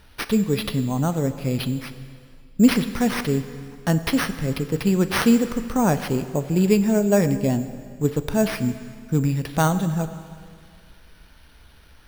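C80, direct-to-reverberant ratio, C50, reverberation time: 12.5 dB, 10.5 dB, 12.0 dB, 2.1 s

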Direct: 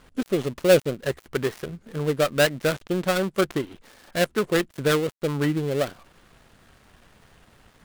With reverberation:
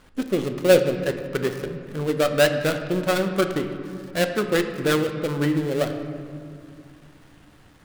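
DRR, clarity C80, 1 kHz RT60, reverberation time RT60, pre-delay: 6.0 dB, 9.0 dB, 2.2 s, 2.4 s, 3 ms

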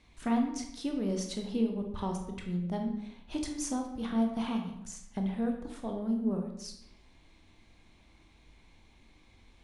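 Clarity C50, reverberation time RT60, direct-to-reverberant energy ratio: 6.0 dB, 0.80 s, 3.0 dB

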